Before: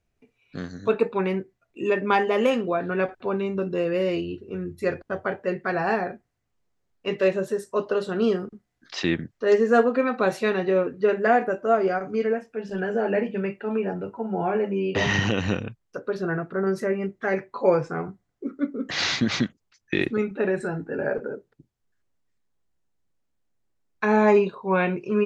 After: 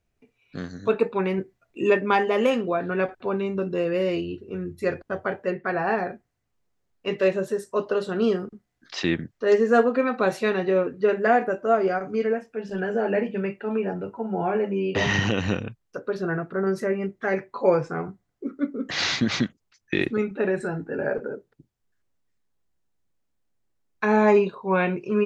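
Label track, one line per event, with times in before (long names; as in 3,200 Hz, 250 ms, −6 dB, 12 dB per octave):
1.380000	1.970000	clip gain +3.5 dB
5.510000	5.980000	bass and treble bass −2 dB, treble −11 dB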